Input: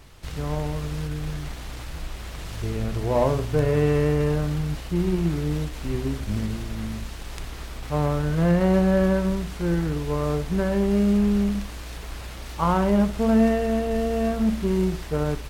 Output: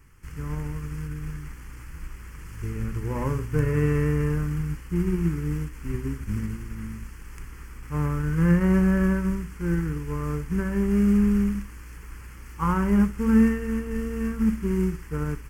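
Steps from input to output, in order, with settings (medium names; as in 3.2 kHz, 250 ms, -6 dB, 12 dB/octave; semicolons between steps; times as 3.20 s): static phaser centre 1.6 kHz, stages 4; upward expansion 1.5:1, over -33 dBFS; trim +3 dB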